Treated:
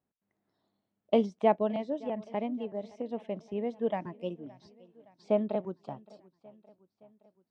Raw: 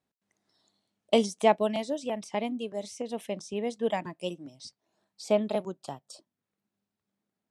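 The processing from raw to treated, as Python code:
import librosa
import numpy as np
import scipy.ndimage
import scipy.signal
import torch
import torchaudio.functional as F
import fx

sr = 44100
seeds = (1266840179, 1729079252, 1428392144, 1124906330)

y = fx.spacing_loss(x, sr, db_at_10k=38)
y = fx.echo_feedback(y, sr, ms=568, feedback_pct=59, wet_db=-22.5)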